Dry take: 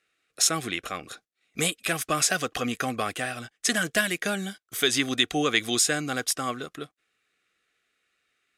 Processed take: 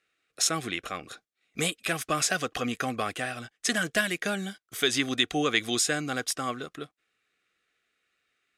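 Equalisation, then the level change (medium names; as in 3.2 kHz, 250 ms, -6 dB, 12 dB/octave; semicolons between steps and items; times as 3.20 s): treble shelf 9.2 kHz -6.5 dB; -1.5 dB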